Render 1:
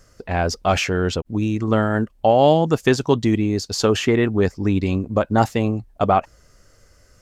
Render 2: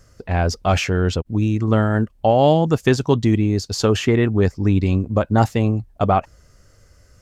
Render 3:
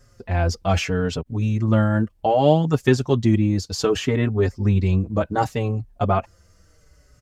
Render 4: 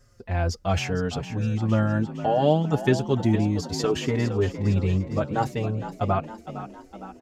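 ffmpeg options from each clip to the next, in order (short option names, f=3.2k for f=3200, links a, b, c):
-af "equalizer=f=88:t=o:w=2:g=6.5,volume=-1dB"
-filter_complex "[0:a]asplit=2[a][b];[b]adelay=5.1,afreqshift=-0.68[c];[a][c]amix=inputs=2:normalize=1"
-filter_complex "[0:a]asplit=7[a][b][c][d][e][f][g];[b]adelay=460,afreqshift=46,volume=-12dB[h];[c]adelay=920,afreqshift=92,volume=-17.2dB[i];[d]adelay=1380,afreqshift=138,volume=-22.4dB[j];[e]adelay=1840,afreqshift=184,volume=-27.6dB[k];[f]adelay=2300,afreqshift=230,volume=-32.8dB[l];[g]adelay=2760,afreqshift=276,volume=-38dB[m];[a][h][i][j][k][l][m]amix=inputs=7:normalize=0,volume=-4dB"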